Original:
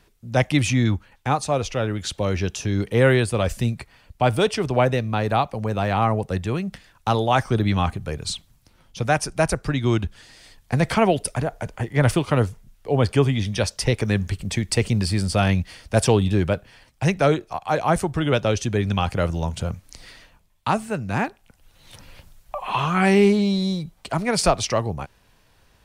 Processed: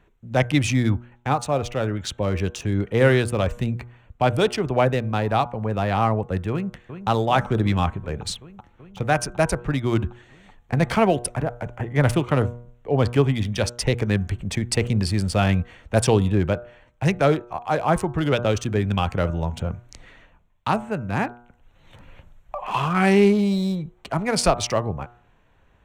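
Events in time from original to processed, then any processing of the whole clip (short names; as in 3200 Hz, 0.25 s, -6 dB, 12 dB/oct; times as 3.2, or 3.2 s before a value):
6.51–7.08 echo throw 0.38 s, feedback 80%, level -10.5 dB
whole clip: Wiener smoothing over 9 samples; de-hum 120.1 Hz, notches 13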